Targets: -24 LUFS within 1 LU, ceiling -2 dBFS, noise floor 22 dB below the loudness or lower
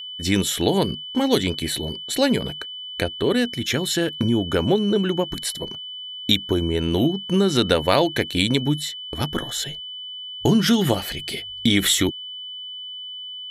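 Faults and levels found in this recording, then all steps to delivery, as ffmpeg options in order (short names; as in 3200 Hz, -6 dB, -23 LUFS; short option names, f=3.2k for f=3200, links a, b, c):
steady tone 3000 Hz; tone level -32 dBFS; loudness -22.5 LUFS; peak -2.5 dBFS; loudness target -24.0 LUFS
-> -af "bandreject=f=3k:w=30"
-af "volume=-1.5dB"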